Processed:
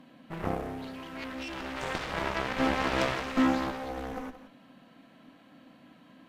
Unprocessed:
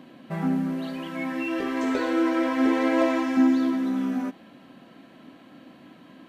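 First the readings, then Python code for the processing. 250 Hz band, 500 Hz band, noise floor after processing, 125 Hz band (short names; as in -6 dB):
-10.0 dB, -6.0 dB, -57 dBFS, n/a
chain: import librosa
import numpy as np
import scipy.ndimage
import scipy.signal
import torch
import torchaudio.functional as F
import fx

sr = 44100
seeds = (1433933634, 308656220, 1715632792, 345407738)

y = fx.peak_eq(x, sr, hz=370.0, db=-9.5, octaves=0.31)
y = fx.cheby_harmonics(y, sr, harmonics=(4, 5, 7, 8), levels_db=(-13, -15, -7, -22), full_scale_db=-11.0)
y = y + 10.0 ** (-13.5 / 20.0) * np.pad(y, (int(173 * sr / 1000.0), 0))[:len(y)]
y = F.gain(torch.from_numpy(y), -7.5).numpy()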